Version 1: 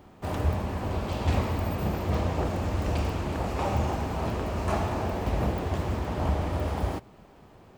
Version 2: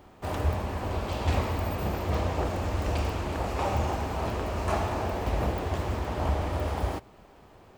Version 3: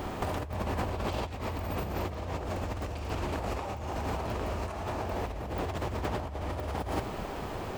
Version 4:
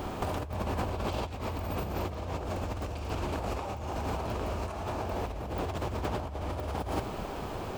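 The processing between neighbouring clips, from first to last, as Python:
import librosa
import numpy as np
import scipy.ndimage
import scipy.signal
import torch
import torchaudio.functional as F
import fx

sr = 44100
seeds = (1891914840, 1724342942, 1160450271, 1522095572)

y1 = fx.peak_eq(x, sr, hz=170.0, db=-5.5, octaves=1.6)
y1 = y1 * librosa.db_to_amplitude(1.0)
y2 = fx.over_compress(y1, sr, threshold_db=-40.0, ratio=-1.0)
y2 = y2 * librosa.db_to_amplitude(6.0)
y3 = fx.peak_eq(y2, sr, hz=1900.0, db=-5.0, octaves=0.29)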